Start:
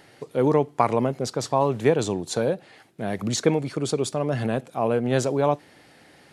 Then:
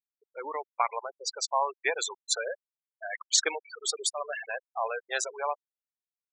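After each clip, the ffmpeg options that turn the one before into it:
-af "highpass=1.3k,afftfilt=real='re*gte(hypot(re,im),0.0355)':imag='im*gte(hypot(re,im),0.0355)':win_size=1024:overlap=0.75,dynaudnorm=f=240:g=11:m=5.5dB"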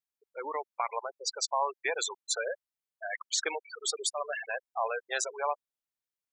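-af "alimiter=limit=-18.5dB:level=0:latency=1:release=49"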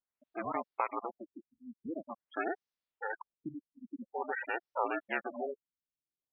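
-filter_complex "[0:a]asplit=2[a][b];[b]acompressor=threshold=-39dB:ratio=6,volume=-3dB[c];[a][c]amix=inputs=2:normalize=0,aeval=exprs='val(0)*sin(2*PI*170*n/s)':c=same,afftfilt=real='re*lt(b*sr/1024,280*pow(6500/280,0.5+0.5*sin(2*PI*0.47*pts/sr)))':imag='im*lt(b*sr/1024,280*pow(6500/280,0.5+0.5*sin(2*PI*0.47*pts/sr)))':win_size=1024:overlap=0.75"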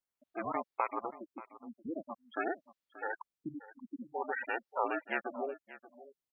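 -af "aecho=1:1:582:0.141"

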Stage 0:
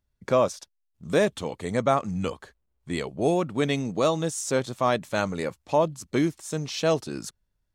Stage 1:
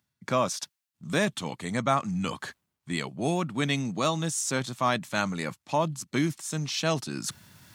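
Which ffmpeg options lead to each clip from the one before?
-af "highpass=f=120:w=0.5412,highpass=f=120:w=1.3066,equalizer=f=470:w=1.2:g=-11.5,areverse,acompressor=mode=upward:threshold=-30dB:ratio=2.5,areverse,volume=2dB"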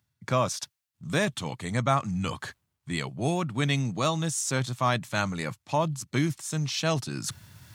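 -af "lowshelf=f=150:t=q:w=1.5:g=6.5"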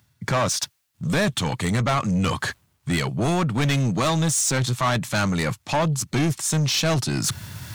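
-filter_complex "[0:a]asplit=2[a][b];[b]acompressor=threshold=-34dB:ratio=6,volume=-1dB[c];[a][c]amix=inputs=2:normalize=0,asoftclip=type=tanh:threshold=-25.5dB,volume=8.5dB"

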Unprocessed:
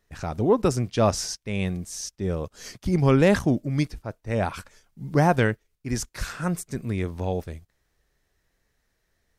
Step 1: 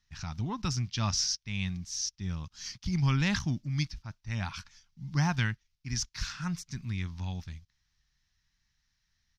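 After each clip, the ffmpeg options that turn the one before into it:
-af "firequalizer=gain_entry='entry(150,0);entry(470,-26);entry(890,-5);entry(3100,4);entry(5700,8);entry(8300,-13)':delay=0.05:min_phase=1,volume=-4.5dB"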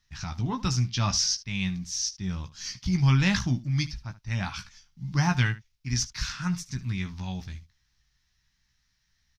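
-af "aecho=1:1:16|74:0.473|0.141,volume=3.5dB"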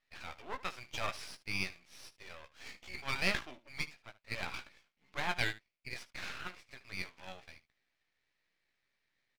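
-af "highpass=f=440:w=0.5412,highpass=f=440:w=1.3066,equalizer=f=560:t=q:w=4:g=9,equalizer=f=900:t=q:w=4:g=-4,equalizer=f=2.3k:t=q:w=4:g=8,lowpass=f=3.2k:w=0.5412,lowpass=f=3.2k:w=1.3066,aeval=exprs='max(val(0),0)':c=same,volume=-1.5dB"

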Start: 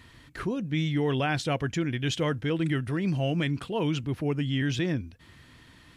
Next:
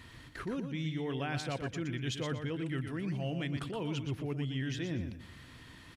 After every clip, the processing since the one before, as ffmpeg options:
-af "areverse,acompressor=threshold=-34dB:ratio=6,areverse,aecho=1:1:120|240|360:0.422|0.11|0.0285"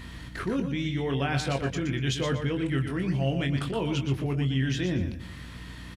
-filter_complex "[0:a]aeval=exprs='val(0)+0.00355*(sin(2*PI*60*n/s)+sin(2*PI*2*60*n/s)/2+sin(2*PI*3*60*n/s)/3+sin(2*PI*4*60*n/s)/4+sin(2*PI*5*60*n/s)/5)':c=same,asplit=2[a][b];[b]adelay=22,volume=-6.5dB[c];[a][c]amix=inputs=2:normalize=0,volume=7dB"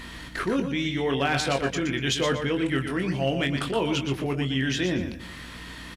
-af "equalizer=f=96:w=0.72:g=-12.5,volume=21.5dB,asoftclip=hard,volume=-21.5dB,volume=6dB" -ar 48000 -c:a libvorbis -b:a 192k

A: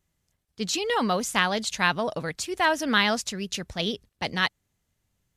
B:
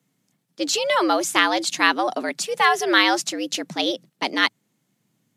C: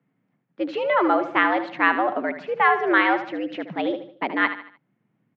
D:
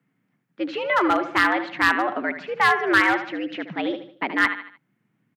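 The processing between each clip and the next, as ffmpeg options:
-af "afreqshift=110,volume=5dB"
-filter_complex "[0:a]lowpass=f=2.2k:w=0.5412,lowpass=f=2.2k:w=1.3066,asplit=2[a][b];[b]aecho=0:1:75|150|225|300:0.282|0.113|0.0451|0.018[c];[a][c]amix=inputs=2:normalize=0"
-filter_complex "[0:a]acrossover=split=2700[a][b];[b]acompressor=threshold=-40dB:ratio=4:attack=1:release=60[c];[a][c]amix=inputs=2:normalize=0,asoftclip=type=hard:threshold=-11.5dB,firequalizer=gain_entry='entry(320,0);entry(550,-4);entry(1500,4)':delay=0.05:min_phase=1"

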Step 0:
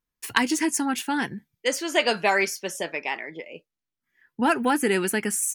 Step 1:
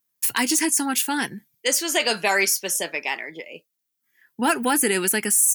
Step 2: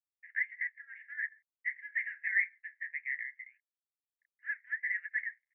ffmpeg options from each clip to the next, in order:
-af "highpass=130,aemphasis=mode=production:type=75kf,alimiter=limit=-9dB:level=0:latency=1:release=11"
-af "flanger=delay=5.4:depth=6.3:regen=-61:speed=1.6:shape=sinusoidal,aresample=11025,aeval=exprs='sgn(val(0))*max(abs(val(0))-0.00168,0)':c=same,aresample=44100,asuperpass=centerf=1900:order=8:qfactor=3.9"

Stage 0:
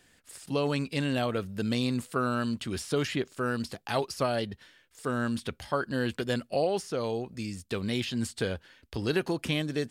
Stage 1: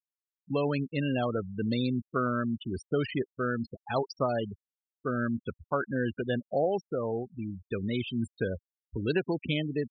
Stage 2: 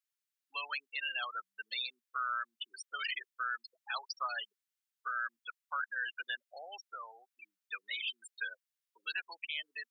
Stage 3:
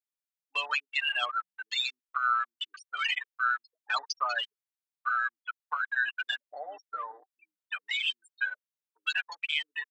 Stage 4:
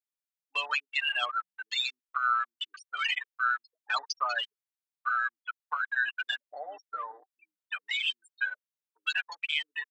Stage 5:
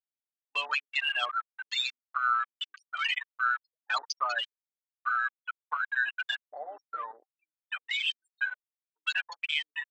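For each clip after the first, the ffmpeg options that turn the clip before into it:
-af "afftfilt=real='re*gte(hypot(re,im),0.0447)':imag='im*gte(hypot(re,im),0.0447)':win_size=1024:overlap=0.75,deesser=0.65"
-af "highpass=f=1.3k:w=0.5412,highpass=f=1.3k:w=1.3066,alimiter=level_in=7.5dB:limit=-24dB:level=0:latency=1:release=49,volume=-7.5dB,volume=4.5dB"
-af "afwtdn=0.00355,aecho=1:1:6.7:0.69,volume=6.5dB"
-af anull
-af "afwtdn=0.00891"

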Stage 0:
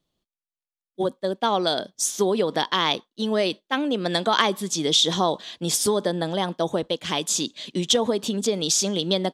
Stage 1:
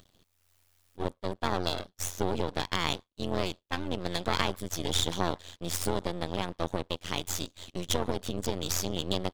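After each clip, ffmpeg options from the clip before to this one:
-af "acompressor=mode=upward:threshold=-37dB:ratio=2.5,aeval=exprs='max(val(0),0)':c=same,tremolo=f=88:d=0.947,volume=-1.5dB"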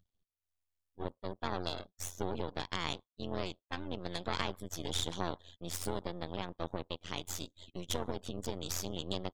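-af "afftdn=nr=20:nf=-50,volume=-7dB"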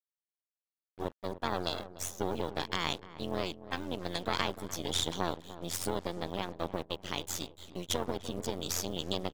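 -filter_complex "[0:a]lowshelf=f=95:g=-7,acrusher=bits=8:mix=0:aa=0.5,asplit=2[a][b];[b]adelay=298,lowpass=f=1.1k:p=1,volume=-13.5dB,asplit=2[c][d];[d]adelay=298,lowpass=f=1.1k:p=1,volume=0.42,asplit=2[e][f];[f]adelay=298,lowpass=f=1.1k:p=1,volume=0.42,asplit=2[g][h];[h]adelay=298,lowpass=f=1.1k:p=1,volume=0.42[i];[a][c][e][g][i]amix=inputs=5:normalize=0,volume=4dB"

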